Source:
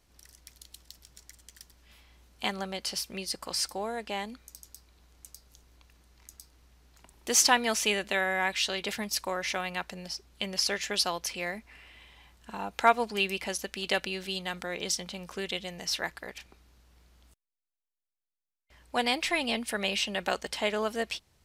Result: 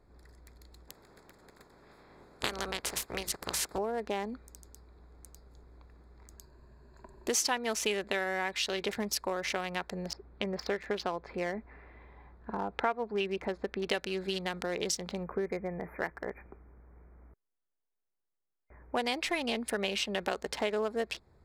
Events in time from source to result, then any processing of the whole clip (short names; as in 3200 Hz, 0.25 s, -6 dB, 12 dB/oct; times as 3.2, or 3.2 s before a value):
0.87–3.77 spectral limiter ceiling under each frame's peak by 23 dB
6.37–7.28 ripple EQ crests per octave 1.4, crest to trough 10 dB
10.13–13.9 LPF 2600 Hz
15.23–18.97 brick-wall FIR band-stop 2500–11000 Hz
whole clip: Wiener smoothing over 15 samples; bell 410 Hz +5.5 dB 0.45 oct; compressor 3:1, threshold -36 dBFS; gain +5 dB